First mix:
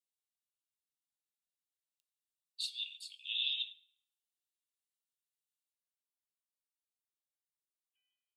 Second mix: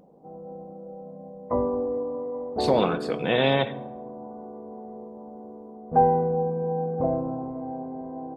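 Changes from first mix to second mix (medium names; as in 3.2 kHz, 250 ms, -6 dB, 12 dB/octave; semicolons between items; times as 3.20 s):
background: entry -2.00 s; master: remove rippled Chebyshev high-pass 2.7 kHz, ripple 6 dB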